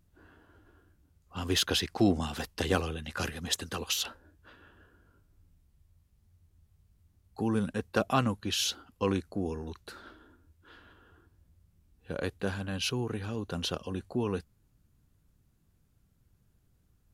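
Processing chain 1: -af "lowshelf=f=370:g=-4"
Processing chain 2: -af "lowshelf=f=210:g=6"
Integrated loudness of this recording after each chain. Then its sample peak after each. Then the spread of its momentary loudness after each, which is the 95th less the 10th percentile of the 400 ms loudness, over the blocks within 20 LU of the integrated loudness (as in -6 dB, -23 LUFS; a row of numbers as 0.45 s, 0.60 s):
-33.0 LUFS, -30.5 LUFS; -13.0 dBFS, -10.5 dBFS; 11 LU, 11 LU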